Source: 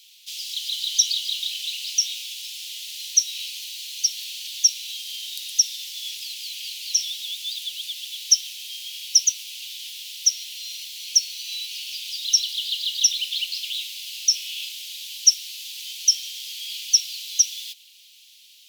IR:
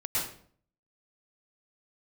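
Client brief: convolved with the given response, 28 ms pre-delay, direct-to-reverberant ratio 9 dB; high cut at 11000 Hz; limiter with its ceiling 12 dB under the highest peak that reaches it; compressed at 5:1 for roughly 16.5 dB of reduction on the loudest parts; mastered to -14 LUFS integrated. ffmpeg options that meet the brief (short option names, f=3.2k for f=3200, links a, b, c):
-filter_complex "[0:a]lowpass=11k,acompressor=threshold=-31dB:ratio=5,alimiter=level_in=6dB:limit=-24dB:level=0:latency=1,volume=-6dB,asplit=2[a][b];[1:a]atrim=start_sample=2205,adelay=28[c];[b][c]afir=irnorm=-1:irlink=0,volume=-16.5dB[d];[a][d]amix=inputs=2:normalize=0,volume=22.5dB"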